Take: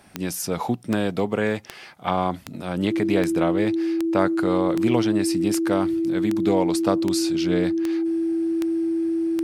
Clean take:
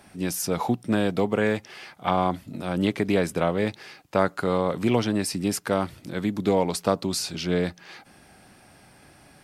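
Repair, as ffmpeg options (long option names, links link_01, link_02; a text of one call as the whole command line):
ffmpeg -i in.wav -af "adeclick=threshold=4,bandreject=frequency=330:width=30" out.wav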